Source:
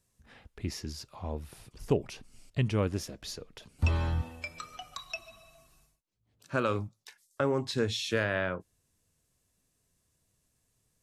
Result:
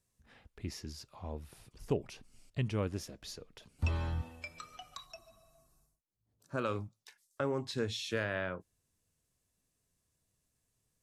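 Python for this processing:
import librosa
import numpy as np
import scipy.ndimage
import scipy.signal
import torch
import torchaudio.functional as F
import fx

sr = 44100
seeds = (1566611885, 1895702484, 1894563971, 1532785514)

y = fx.peak_eq(x, sr, hz=2700.0, db=-13.5, octaves=1.3, at=(5.05, 6.57), fade=0.02)
y = y * librosa.db_to_amplitude(-5.5)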